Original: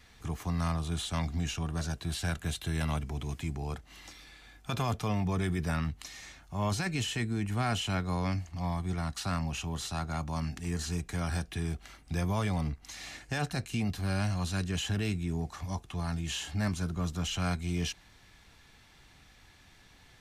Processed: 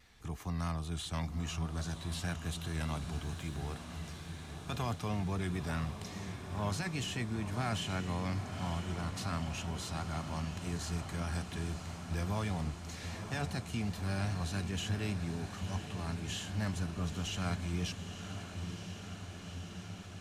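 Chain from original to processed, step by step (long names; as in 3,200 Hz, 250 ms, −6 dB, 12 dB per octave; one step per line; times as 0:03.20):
0:03.13–0:03.75: surface crackle 140 per second −45 dBFS
pitch vibrato 4.9 Hz 44 cents
feedback delay with all-pass diffusion 942 ms, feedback 77%, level −9 dB
level −5 dB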